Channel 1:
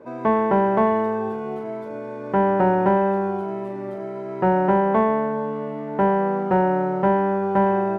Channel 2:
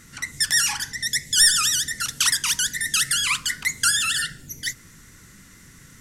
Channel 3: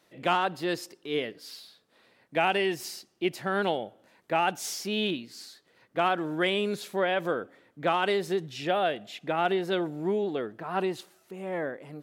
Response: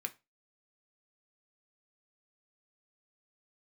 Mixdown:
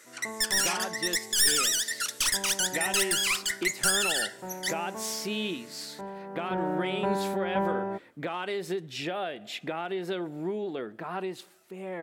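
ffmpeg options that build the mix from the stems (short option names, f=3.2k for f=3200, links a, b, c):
-filter_complex "[0:a]volume=-10dB,afade=t=in:st=6.23:d=0.55:silence=0.281838[a];[1:a]highpass=f=350:w=0.5412,highpass=f=350:w=1.3066,aeval=exprs='clip(val(0),-1,0.0891)':c=same,volume=-5.5dB,asplit=2[b][c];[c]volume=-11.5dB[d];[2:a]dynaudnorm=f=350:g=11:m=9dB,alimiter=limit=-11.5dB:level=0:latency=1:release=269,acompressor=threshold=-31dB:ratio=2.5,adelay=400,volume=-4.5dB,asplit=2[e][f];[f]volume=-7dB[g];[3:a]atrim=start_sample=2205[h];[d][g]amix=inputs=2:normalize=0[i];[i][h]afir=irnorm=-1:irlink=0[j];[a][b][e][j]amix=inputs=4:normalize=0"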